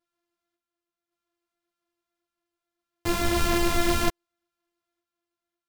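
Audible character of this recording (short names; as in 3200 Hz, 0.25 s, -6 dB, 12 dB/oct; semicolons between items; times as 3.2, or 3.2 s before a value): a buzz of ramps at a fixed pitch in blocks of 128 samples; random-step tremolo 1.8 Hz; a shimmering, thickened sound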